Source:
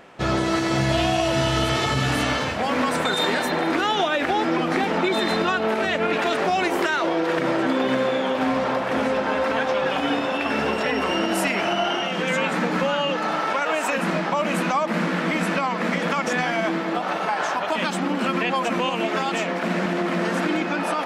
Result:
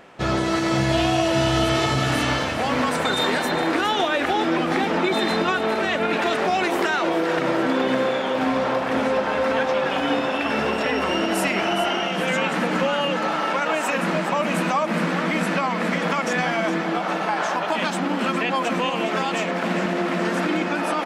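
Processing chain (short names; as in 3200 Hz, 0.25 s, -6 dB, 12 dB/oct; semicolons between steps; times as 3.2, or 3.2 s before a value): feedback echo 0.413 s, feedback 57%, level -11 dB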